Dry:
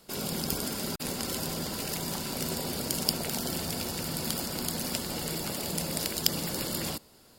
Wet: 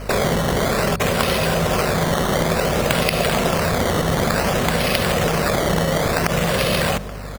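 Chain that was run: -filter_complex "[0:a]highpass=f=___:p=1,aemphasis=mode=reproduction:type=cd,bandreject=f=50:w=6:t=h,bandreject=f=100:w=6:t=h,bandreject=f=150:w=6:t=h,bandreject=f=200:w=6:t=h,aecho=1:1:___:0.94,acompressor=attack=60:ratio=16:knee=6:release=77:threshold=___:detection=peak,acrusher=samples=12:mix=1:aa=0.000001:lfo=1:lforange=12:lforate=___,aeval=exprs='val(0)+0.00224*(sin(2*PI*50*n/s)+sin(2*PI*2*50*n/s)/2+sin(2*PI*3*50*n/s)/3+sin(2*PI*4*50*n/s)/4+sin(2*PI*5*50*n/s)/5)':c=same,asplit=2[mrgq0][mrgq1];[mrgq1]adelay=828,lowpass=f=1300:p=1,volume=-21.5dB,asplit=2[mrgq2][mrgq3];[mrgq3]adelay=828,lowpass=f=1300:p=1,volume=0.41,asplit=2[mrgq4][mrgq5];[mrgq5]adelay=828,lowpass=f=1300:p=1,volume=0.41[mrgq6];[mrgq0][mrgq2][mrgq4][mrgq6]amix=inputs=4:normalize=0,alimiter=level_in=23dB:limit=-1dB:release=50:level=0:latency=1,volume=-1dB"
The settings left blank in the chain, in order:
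97, 1.7, -43dB, 0.56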